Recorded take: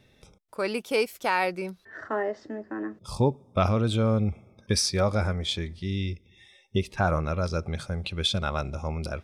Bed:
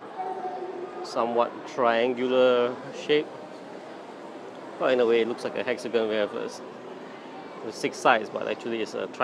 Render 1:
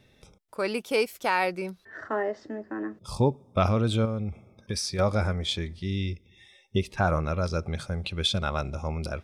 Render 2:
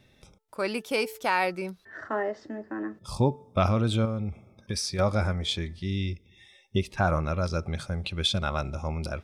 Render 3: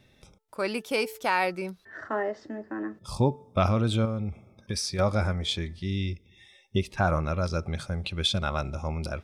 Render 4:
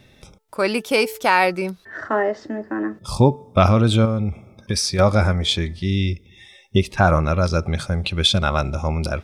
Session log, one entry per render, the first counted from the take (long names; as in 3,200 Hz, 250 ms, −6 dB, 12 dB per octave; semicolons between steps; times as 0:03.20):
0:04.05–0:04.99: downward compressor 2 to 1, threshold −31 dBFS
parametric band 450 Hz −4 dB 0.25 octaves; hum removal 439.4 Hz, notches 4
no processing that can be heard
level +9 dB